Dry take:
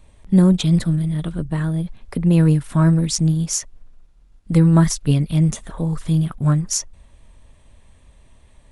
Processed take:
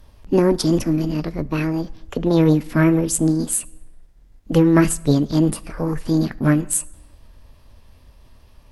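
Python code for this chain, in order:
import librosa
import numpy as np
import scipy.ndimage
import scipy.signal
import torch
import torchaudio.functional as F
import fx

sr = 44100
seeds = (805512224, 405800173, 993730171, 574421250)

y = fx.peak_eq(x, sr, hz=180.0, db=-5.5, octaves=0.24)
y = fx.formant_shift(y, sr, semitones=6)
y = fx.rev_plate(y, sr, seeds[0], rt60_s=0.96, hf_ratio=0.7, predelay_ms=0, drr_db=19.5)
y = y * librosa.db_to_amplitude(1.0)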